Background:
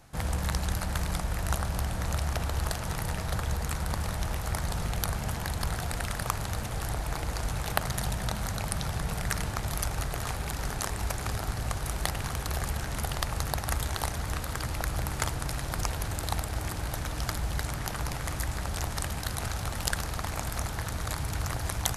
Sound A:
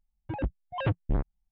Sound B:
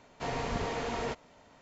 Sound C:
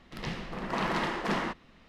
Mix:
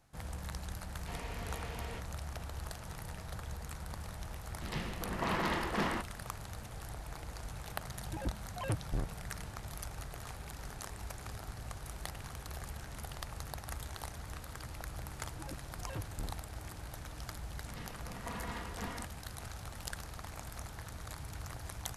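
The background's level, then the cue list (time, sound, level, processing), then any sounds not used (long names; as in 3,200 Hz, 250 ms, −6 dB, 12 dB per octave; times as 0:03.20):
background −12.5 dB
0:00.86: mix in B −13.5 dB + parametric band 2,600 Hz +6.5 dB 1.6 octaves
0:04.49: mix in C −3.5 dB
0:07.83: mix in A −8 dB
0:15.09: mix in A −15 dB
0:17.53: mix in C −15 dB + comb filter 4.2 ms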